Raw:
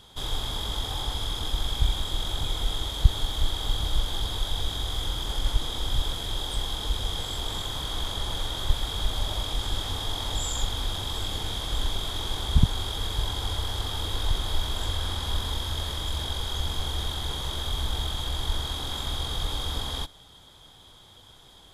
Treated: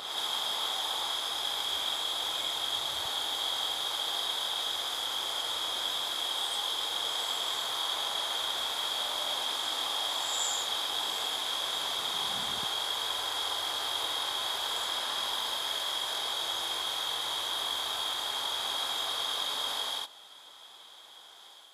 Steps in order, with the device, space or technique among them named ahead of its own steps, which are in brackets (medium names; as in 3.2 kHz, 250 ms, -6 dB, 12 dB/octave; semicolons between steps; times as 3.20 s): ghost voice (reverse; reverberation RT60 2.3 s, pre-delay 47 ms, DRR -3 dB; reverse; high-pass 710 Hz 12 dB/octave); trim -1.5 dB